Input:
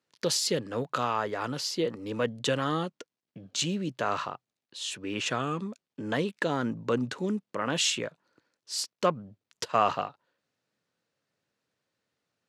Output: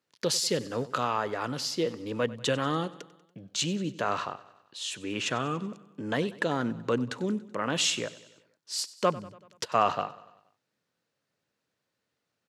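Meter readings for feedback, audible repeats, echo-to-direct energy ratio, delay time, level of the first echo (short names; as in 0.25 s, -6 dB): 57%, 4, -17.0 dB, 95 ms, -18.5 dB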